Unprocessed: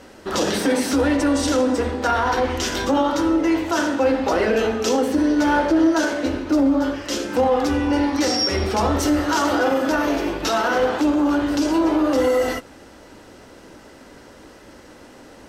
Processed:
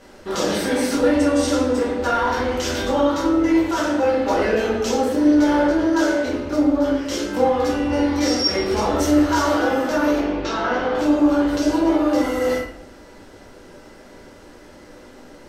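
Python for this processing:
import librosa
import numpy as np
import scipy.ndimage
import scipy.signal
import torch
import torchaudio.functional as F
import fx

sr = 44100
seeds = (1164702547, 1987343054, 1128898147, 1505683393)

y = fx.air_absorb(x, sr, metres=130.0, at=(10.18, 10.95))
y = fx.room_shoebox(y, sr, seeds[0], volume_m3=92.0, walls='mixed', distance_m=1.2)
y = y * 10.0 ** (-5.5 / 20.0)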